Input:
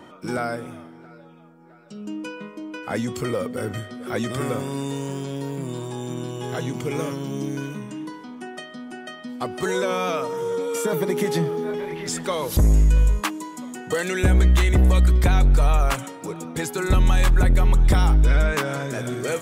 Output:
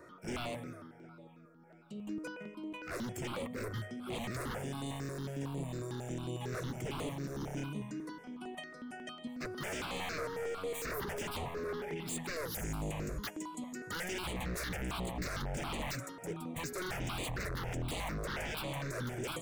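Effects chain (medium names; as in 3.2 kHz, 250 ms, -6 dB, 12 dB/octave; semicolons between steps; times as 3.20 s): wavefolder -25 dBFS; stepped phaser 11 Hz 840–5400 Hz; trim -6 dB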